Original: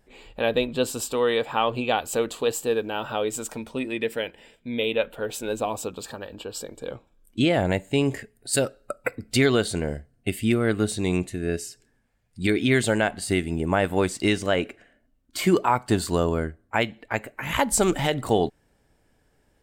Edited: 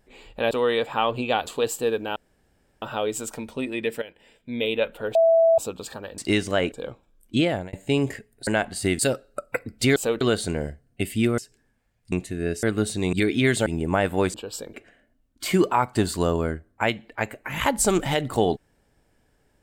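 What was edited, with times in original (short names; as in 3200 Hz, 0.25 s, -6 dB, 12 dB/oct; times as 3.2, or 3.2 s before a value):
0.51–1.1 cut
2.06–2.31 move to 9.48
3 insert room tone 0.66 s
4.2–4.71 fade in linear, from -14 dB
5.33–5.76 bleep 659 Hz -13.5 dBFS
6.36–6.76 swap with 14.13–14.67
7.46–7.77 fade out
10.65–11.15 swap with 11.66–12.4
12.93–13.45 move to 8.51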